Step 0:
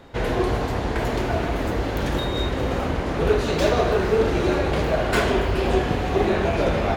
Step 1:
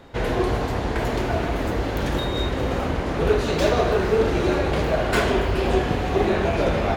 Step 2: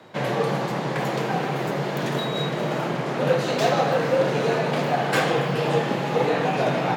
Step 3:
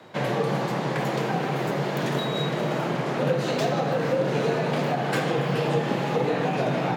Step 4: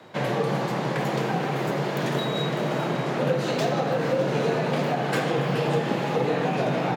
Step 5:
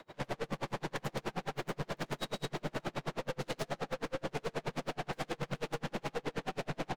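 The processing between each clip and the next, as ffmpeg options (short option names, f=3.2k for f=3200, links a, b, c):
-af anull
-af "equalizer=f=10k:t=o:w=0.2:g=-2,afreqshift=89,lowshelf=f=290:g=-4.5"
-filter_complex "[0:a]acrossover=split=400[a][b];[b]acompressor=threshold=-25dB:ratio=6[c];[a][c]amix=inputs=2:normalize=0"
-af "aecho=1:1:602:0.2"
-af "aeval=exprs='(tanh(50.1*val(0)+0.5)-tanh(0.5))/50.1':c=same,aeval=exprs='val(0)*pow(10,-37*(0.5-0.5*cos(2*PI*9.4*n/s))/20)':c=same,volume=3dB"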